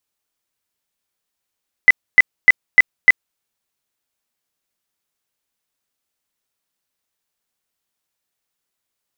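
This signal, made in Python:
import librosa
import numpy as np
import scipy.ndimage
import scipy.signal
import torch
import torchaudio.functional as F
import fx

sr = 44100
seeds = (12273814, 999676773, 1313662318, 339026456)

y = fx.tone_burst(sr, hz=2010.0, cycles=52, every_s=0.3, bursts=5, level_db=-3.0)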